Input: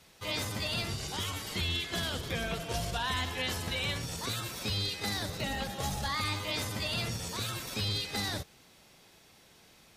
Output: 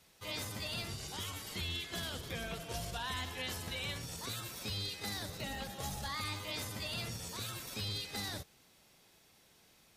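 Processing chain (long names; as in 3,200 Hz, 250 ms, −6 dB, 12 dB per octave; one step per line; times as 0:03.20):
high-shelf EQ 8,700 Hz +6 dB
level −7 dB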